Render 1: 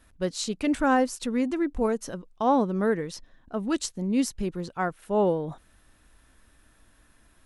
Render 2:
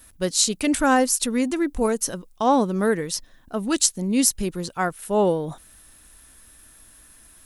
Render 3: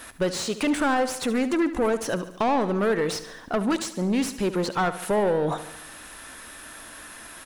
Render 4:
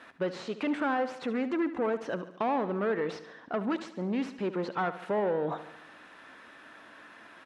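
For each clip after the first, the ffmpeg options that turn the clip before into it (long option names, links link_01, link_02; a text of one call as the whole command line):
ffmpeg -i in.wav -af "aemphasis=mode=production:type=75fm,volume=4dB" out.wav
ffmpeg -i in.wav -filter_complex "[0:a]acompressor=threshold=-29dB:ratio=6,asplit=2[link_01][link_02];[link_02]highpass=frequency=720:poles=1,volume=25dB,asoftclip=type=tanh:threshold=-14.5dB[link_03];[link_01][link_03]amix=inputs=2:normalize=0,lowpass=frequency=1600:poles=1,volume=-6dB,asplit=2[link_04][link_05];[link_05]aecho=0:1:72|144|216|288|360|432:0.211|0.12|0.0687|0.0391|0.0223|0.0127[link_06];[link_04][link_06]amix=inputs=2:normalize=0,volume=1dB" out.wav
ffmpeg -i in.wav -af "highpass=170,lowpass=2700,volume=-6dB" out.wav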